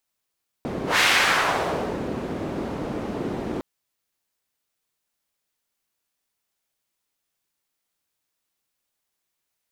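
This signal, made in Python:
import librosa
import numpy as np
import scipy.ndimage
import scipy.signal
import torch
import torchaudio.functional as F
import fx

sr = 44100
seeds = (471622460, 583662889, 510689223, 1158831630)

y = fx.whoosh(sr, seeds[0], length_s=2.96, peak_s=0.34, rise_s=0.15, fall_s=1.14, ends_hz=320.0, peak_hz=2300.0, q=1.1, swell_db=11.0)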